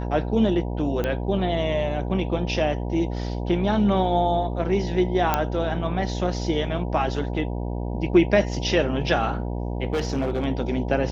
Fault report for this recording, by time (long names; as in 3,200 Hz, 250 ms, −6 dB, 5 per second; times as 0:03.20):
mains buzz 60 Hz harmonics 16 −28 dBFS
0:01.04: click −13 dBFS
0:05.34: click −6 dBFS
0:09.93–0:10.45: clipping −20 dBFS